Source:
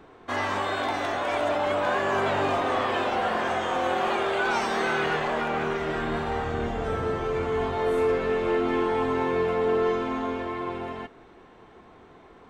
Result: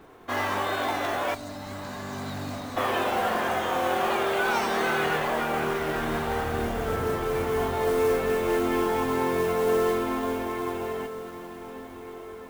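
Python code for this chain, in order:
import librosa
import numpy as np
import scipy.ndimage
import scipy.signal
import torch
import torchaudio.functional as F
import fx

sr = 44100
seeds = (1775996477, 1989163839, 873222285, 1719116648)

y = fx.spec_box(x, sr, start_s=1.34, length_s=1.43, low_hz=300.0, high_hz=3700.0, gain_db=-16)
y = fx.mod_noise(y, sr, seeds[0], snr_db=20)
y = fx.echo_diffused(y, sr, ms=1458, feedback_pct=43, wet_db=-13.5)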